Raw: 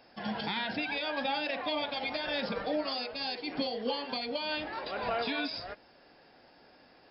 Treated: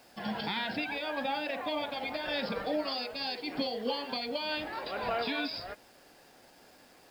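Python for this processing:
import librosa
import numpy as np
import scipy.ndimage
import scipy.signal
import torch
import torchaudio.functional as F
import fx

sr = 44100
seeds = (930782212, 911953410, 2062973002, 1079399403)

y = fx.high_shelf(x, sr, hz=4400.0, db=-10.0, at=(0.84, 2.26))
y = fx.quant_dither(y, sr, seeds[0], bits=10, dither='none')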